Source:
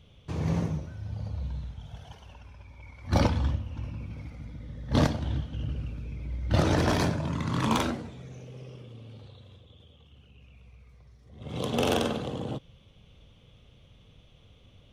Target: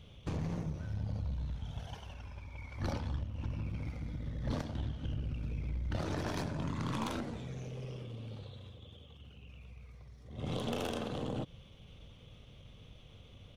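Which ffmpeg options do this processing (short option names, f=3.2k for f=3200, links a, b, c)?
-af "acompressor=threshold=-34dB:ratio=10,aeval=exprs='(tanh(31.6*val(0)+0.5)-tanh(0.5))/31.6':c=same,atempo=1.1,volume=3.5dB"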